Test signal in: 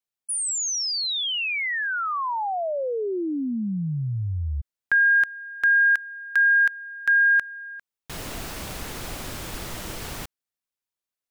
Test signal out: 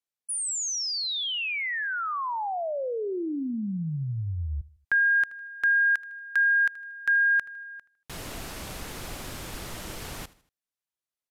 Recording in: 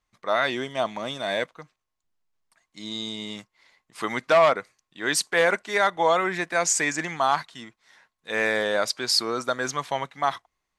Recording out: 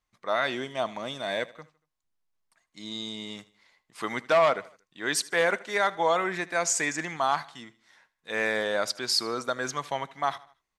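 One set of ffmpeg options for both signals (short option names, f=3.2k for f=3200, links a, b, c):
-filter_complex "[0:a]asplit=2[a][b];[b]aecho=0:1:78|156|234:0.1|0.043|0.0185[c];[a][c]amix=inputs=2:normalize=0,aresample=32000,aresample=44100,volume=-3.5dB"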